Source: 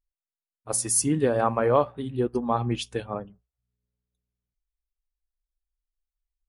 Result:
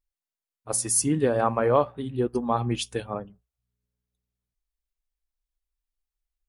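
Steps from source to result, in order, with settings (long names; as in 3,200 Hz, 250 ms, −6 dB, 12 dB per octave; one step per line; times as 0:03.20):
0:02.33–0:03.21: high-shelf EQ 6,800 Hz +9 dB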